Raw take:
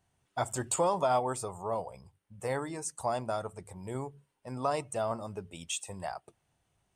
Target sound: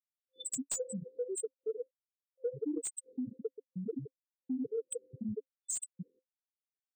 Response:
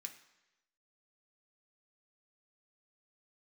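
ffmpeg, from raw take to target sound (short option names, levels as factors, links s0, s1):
-filter_complex "[0:a]acrossover=split=580[s0][s1];[s0]alimiter=level_in=2.99:limit=0.0631:level=0:latency=1:release=120,volume=0.335[s2];[s2][s1]amix=inputs=2:normalize=0,asplit=2[s3][s4];[s4]adelay=180.8,volume=0.224,highshelf=f=4000:g=-4.07[s5];[s3][s5]amix=inputs=2:normalize=0[s6];[1:a]atrim=start_sample=2205,atrim=end_sample=4410[s7];[s6][s7]afir=irnorm=-1:irlink=0,afftfilt=real='re*gte(hypot(re,im),0.0282)':imag='im*gte(hypot(re,im),0.0282)':win_size=1024:overlap=0.75,equalizer=f=280:t=o:w=0.43:g=13,afftfilt=real='re*(1-between(b*sr/4096,520,3500))':imag='im*(1-between(b*sr/4096,520,3500))':win_size=4096:overlap=0.75,asplit=2[s8][s9];[s9]aeval=exprs='clip(val(0),-1,0.0237)':c=same,volume=0.501[s10];[s8][s10]amix=inputs=2:normalize=0,asplit=2[s11][s12];[s12]highpass=f=720:p=1,volume=15.8,asoftclip=type=tanh:threshold=0.224[s13];[s11][s13]amix=inputs=2:normalize=0,lowpass=f=1400:p=1,volume=0.501,acompressor=threshold=0.00316:ratio=2.5,volume=3.35"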